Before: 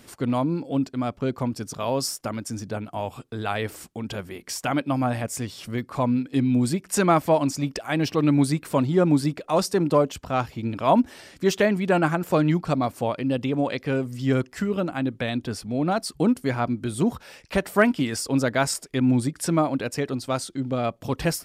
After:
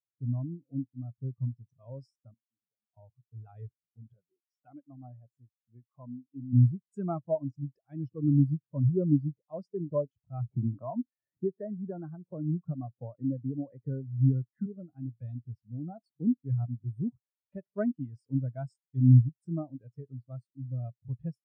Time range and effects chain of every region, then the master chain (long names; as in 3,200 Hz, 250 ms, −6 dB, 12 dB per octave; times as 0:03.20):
0:02.34–0:02.97: meter weighting curve A + downward compressor, threshold −41 dBFS
0:04.13–0:06.53: high-pass filter 310 Hz 6 dB per octave + high-shelf EQ 2,700 Hz −7 dB
0:10.51–0:14.66: Butterworth low-pass 2,100 Hz + low-shelf EQ 100 Hz −6.5 dB + multiband upward and downward compressor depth 100%
whole clip: parametric band 120 Hz +11 dB 0.59 octaves; every bin expanded away from the loudest bin 2.5 to 1; level −4.5 dB